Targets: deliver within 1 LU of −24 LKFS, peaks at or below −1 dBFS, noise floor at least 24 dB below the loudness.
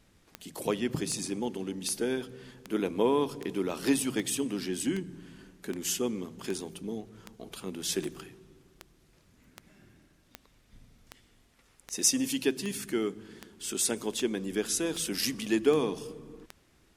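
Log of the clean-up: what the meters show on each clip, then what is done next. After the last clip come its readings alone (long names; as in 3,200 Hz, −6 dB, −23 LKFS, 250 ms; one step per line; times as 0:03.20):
number of clicks 22; integrated loudness −31.0 LKFS; sample peak −10.0 dBFS; target loudness −24.0 LKFS
→ click removal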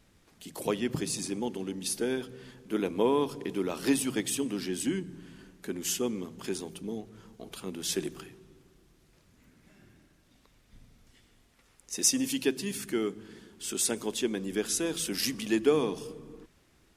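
number of clicks 0; integrated loudness −31.0 LKFS; sample peak −10.0 dBFS; target loudness −24.0 LKFS
→ level +7 dB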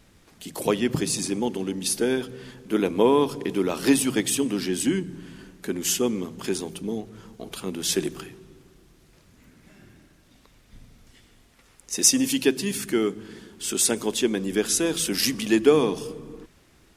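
integrated loudness −24.0 LKFS; sample peak −3.0 dBFS; background noise floor −58 dBFS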